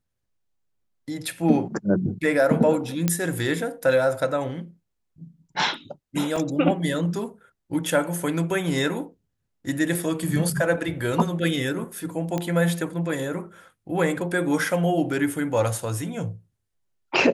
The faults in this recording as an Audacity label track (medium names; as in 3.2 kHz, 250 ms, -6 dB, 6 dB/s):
3.080000	3.080000	pop -7 dBFS
6.360000	6.360000	dropout 4.1 ms
12.380000	12.380000	pop -13 dBFS